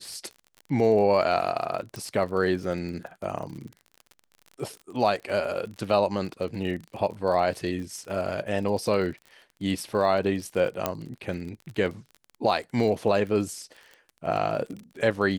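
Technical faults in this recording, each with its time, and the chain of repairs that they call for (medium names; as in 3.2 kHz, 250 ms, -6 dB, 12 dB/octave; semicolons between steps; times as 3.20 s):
crackle 42 per s -35 dBFS
1.96 s: pop -21 dBFS
10.86 s: pop -9 dBFS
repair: de-click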